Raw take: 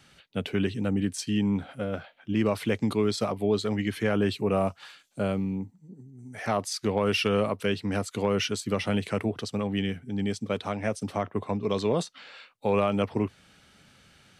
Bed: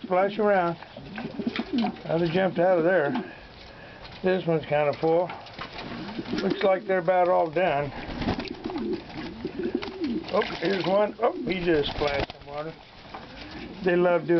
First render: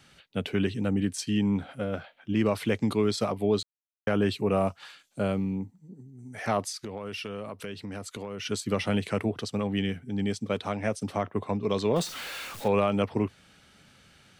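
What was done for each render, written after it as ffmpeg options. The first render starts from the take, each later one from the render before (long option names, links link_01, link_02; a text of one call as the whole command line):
ffmpeg -i in.wav -filter_complex "[0:a]asplit=3[link_01][link_02][link_03];[link_01]afade=type=out:start_time=6.7:duration=0.02[link_04];[link_02]acompressor=threshold=-34dB:ratio=5:attack=3.2:release=140:knee=1:detection=peak,afade=type=in:start_time=6.7:duration=0.02,afade=type=out:start_time=8.45:duration=0.02[link_05];[link_03]afade=type=in:start_time=8.45:duration=0.02[link_06];[link_04][link_05][link_06]amix=inputs=3:normalize=0,asettb=1/sr,asplit=3[link_07][link_08][link_09];[link_07]atrim=end=11.964[link_10];[link_08]atrim=start=11.96:end=12.68,asetpts=PTS-STARTPTS,afade=type=in:duration=0.004:curve=qsin,afade=type=out:start_time=0.716:duration=0.004:curve=qsin,aeval=exprs='val(0)+0.5*0.0188*sgn(val(0))':channel_layout=same[link_11];[link_09]atrim=start=12.676[link_12];[link_10][link_11]acrossfade=duration=0.004:curve1=hsin:curve2=qsin[link_13];[link_13][link_12]acrossfade=duration=0.004:curve1=qsin:curve2=hsin,asplit=3[link_14][link_15][link_16];[link_14]atrim=end=3.63,asetpts=PTS-STARTPTS,afade=type=out:start_time=3.626:duration=0.004:curve=hsin[link_17];[link_15]atrim=start=3.63:end=4.07,asetpts=PTS-STARTPTS,volume=0[link_18];[link_16]atrim=start=4.07,asetpts=PTS-STARTPTS,afade=type=in:duration=0.004:curve=hsin[link_19];[link_17][link_18][link_19]concat=n=3:v=0:a=1" out.wav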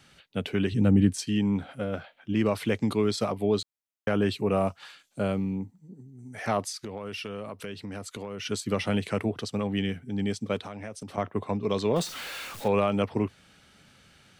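ffmpeg -i in.wav -filter_complex "[0:a]asettb=1/sr,asplit=3[link_01][link_02][link_03];[link_01]atrim=end=0.724[link_04];[link_02]atrim=start=0.72:end=1.26,asetpts=PTS-STARTPTS,afade=type=in:duration=0.004:curve=qsin,afade=type=out:start_time=0.536:duration=0.004:curve=qsin,lowshelf=frequency=300:gain=10[link_05];[link_03]atrim=start=1.256[link_06];[link_04][link_05]acrossfade=duration=0.004:curve1=hsin:curve2=qsin[link_07];[link_07][link_06]acrossfade=duration=0.004:curve1=qsin:curve2=hsin,asettb=1/sr,asplit=3[link_08][link_09][link_10];[link_08]atrim=end=10.594[link_11];[link_09]atrim=start=10.59:end=11.18,asetpts=PTS-STARTPTS,afade=type=in:duration=0.004:curve=qsin,afade=type=out:start_time=0.586:duration=0.004:curve=qsin,acompressor=threshold=-36dB:ratio=4:attack=3.2:release=140:knee=1:detection=peak[link_12];[link_10]atrim=start=11.176[link_13];[link_11][link_12]acrossfade=duration=0.004:curve1=hsin:curve2=qsin[link_14];[link_14][link_13]acrossfade=duration=0.004:curve1=qsin:curve2=hsin" out.wav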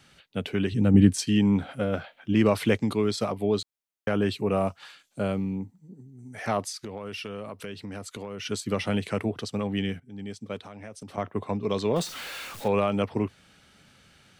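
ffmpeg -i in.wav -filter_complex "[0:a]asplit=4[link_01][link_02][link_03][link_04];[link_01]atrim=end=0.942[link_05];[link_02]atrim=start=0.938:end=2.772,asetpts=PTS-STARTPTS,volume=4dB[link_06];[link_03]atrim=start=2.768:end=10,asetpts=PTS-STARTPTS,afade=type=out:start_time=7.228:duration=0.004:curve=hsin:silence=0.237137[link_07];[link_04]atrim=start=10,asetpts=PTS-STARTPTS,afade=type=in:duration=1.44:silence=0.237137[link_08];[link_05][link_06]acrossfade=duration=0.004:curve1=hsin:curve2=hsin[link_09];[link_07][link_08]concat=n=2:v=0:a=1[link_10];[link_09][link_10]acrossfade=duration=0.004:curve1=hsin:curve2=hsin" out.wav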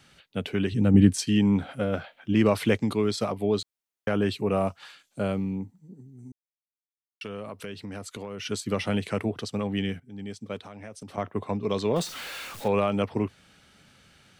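ffmpeg -i in.wav -filter_complex "[0:a]asplit=3[link_01][link_02][link_03];[link_01]atrim=end=6.32,asetpts=PTS-STARTPTS,afade=type=out:start_time=6.316:duration=0.004:curve=hsin[link_04];[link_02]atrim=start=6.32:end=7.21,asetpts=PTS-STARTPTS,volume=0[link_05];[link_03]atrim=start=7.21,asetpts=PTS-STARTPTS,afade=type=in:duration=0.004:curve=hsin[link_06];[link_04][link_05][link_06]concat=n=3:v=0:a=1" out.wav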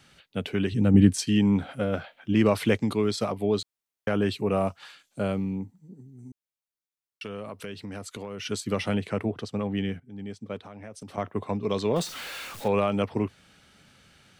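ffmpeg -i in.wav -filter_complex "[0:a]asettb=1/sr,asplit=3[link_01][link_02][link_03];[link_01]atrim=end=8.944[link_04];[link_02]atrim=start=8.94:end=10.94,asetpts=PTS-STARTPTS,afade=type=in:duration=0.004:curve=qsin,afade=type=out:start_time=1.996:duration=0.004:curve=qsin,highshelf=frequency=3100:gain=-8[link_05];[link_03]atrim=start=10.936[link_06];[link_04][link_05]acrossfade=duration=0.004:curve1=hsin:curve2=qsin[link_07];[link_07][link_06]acrossfade=duration=0.004:curve1=qsin:curve2=hsin" out.wav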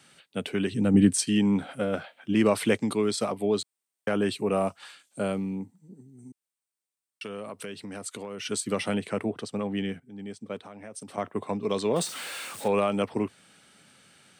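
ffmpeg -i in.wav -af "highpass=160,equalizer=frequency=8600:width_type=o:width=0.26:gain=11.5" out.wav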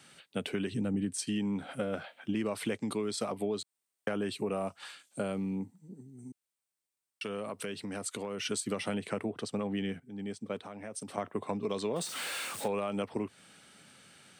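ffmpeg -i in.wav -af "acompressor=threshold=-30dB:ratio=6" out.wav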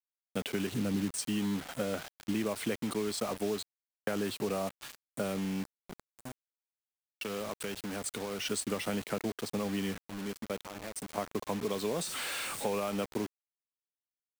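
ffmpeg -i in.wav -af "acrusher=bits=6:mix=0:aa=0.000001" out.wav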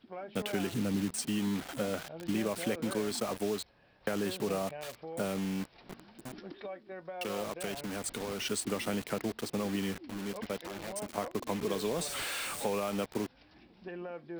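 ffmpeg -i in.wav -i bed.wav -filter_complex "[1:a]volume=-20.5dB[link_01];[0:a][link_01]amix=inputs=2:normalize=0" out.wav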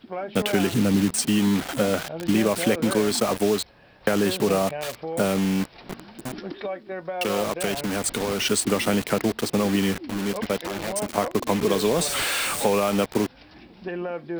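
ffmpeg -i in.wav -af "volume=11.5dB" out.wav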